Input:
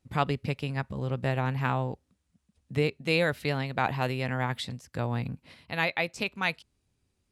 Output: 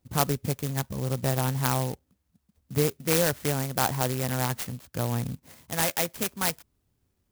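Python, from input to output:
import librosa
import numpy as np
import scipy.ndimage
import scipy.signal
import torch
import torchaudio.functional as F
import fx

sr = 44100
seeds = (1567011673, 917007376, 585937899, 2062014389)

y = fx.clock_jitter(x, sr, seeds[0], jitter_ms=0.11)
y = F.gain(torch.from_numpy(y), 2.0).numpy()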